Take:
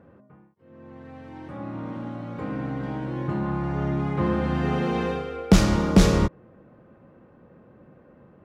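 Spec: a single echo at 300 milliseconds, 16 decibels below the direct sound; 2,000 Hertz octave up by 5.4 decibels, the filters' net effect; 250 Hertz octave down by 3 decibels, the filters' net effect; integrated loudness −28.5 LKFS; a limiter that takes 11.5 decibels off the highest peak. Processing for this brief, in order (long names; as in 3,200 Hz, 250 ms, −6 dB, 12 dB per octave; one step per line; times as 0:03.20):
parametric band 250 Hz −4.5 dB
parametric band 2,000 Hz +7 dB
brickwall limiter −17.5 dBFS
single-tap delay 300 ms −16 dB
level +0.5 dB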